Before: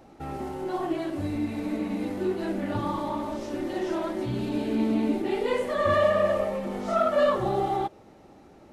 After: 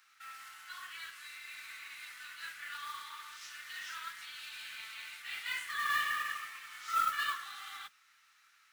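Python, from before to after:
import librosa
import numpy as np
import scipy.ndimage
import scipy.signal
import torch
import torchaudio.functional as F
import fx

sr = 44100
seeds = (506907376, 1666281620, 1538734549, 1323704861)

y = scipy.signal.sosfilt(scipy.signal.butter(8, 1300.0, 'highpass', fs=sr, output='sos'), x)
y = fx.mod_noise(y, sr, seeds[0], snr_db=16)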